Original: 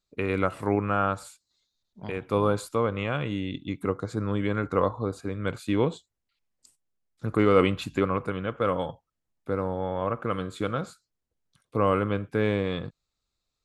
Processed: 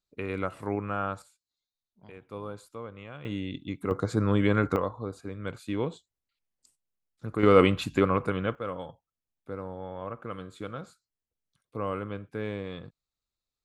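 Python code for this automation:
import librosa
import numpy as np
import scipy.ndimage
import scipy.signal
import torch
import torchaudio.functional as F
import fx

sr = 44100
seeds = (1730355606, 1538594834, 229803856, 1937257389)

y = fx.gain(x, sr, db=fx.steps((0.0, -6.0), (1.22, -15.0), (3.25, -3.0), (3.91, 3.5), (4.76, -6.0), (7.43, 1.5), (8.55, -9.0)))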